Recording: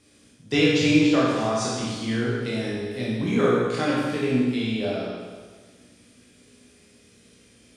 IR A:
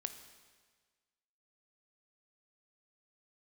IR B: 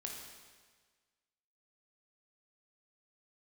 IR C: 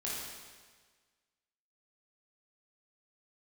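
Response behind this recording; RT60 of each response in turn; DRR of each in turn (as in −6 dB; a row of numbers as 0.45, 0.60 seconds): C; 1.5, 1.5, 1.5 seconds; 8.5, −0.5, −7.0 decibels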